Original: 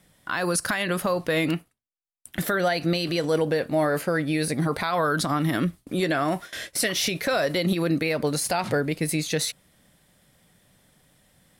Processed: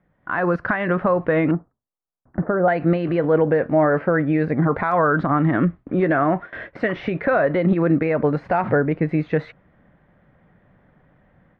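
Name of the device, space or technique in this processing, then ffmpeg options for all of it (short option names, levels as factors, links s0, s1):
action camera in a waterproof case: -filter_complex "[0:a]asettb=1/sr,asplit=3[s0][s1][s2];[s0]atrim=end=1.514[s3];[s1]atrim=start=1.51:end=2.68,asetpts=PTS-STARTPTS,afade=t=in:d=0.004:c=qsin,afade=t=out:st=1.166:d=0.004:c=qsin,lowpass=f=1200:w=0.5412,lowpass=f=1200:w=1.3066[s4];[s2]atrim=start=2.676[s5];[s3][s4]acrossfade=d=0.004:c1=hsin:c2=qsin[s6];[s6][s5]acrossfade=d=0.004:c1=qsin:c2=hsin,lowpass=f=1800:w=0.5412,lowpass=f=1800:w=1.3066,dynaudnorm=f=180:g=3:m=3.35,volume=0.631" -ar 48000 -c:a aac -b:a 96k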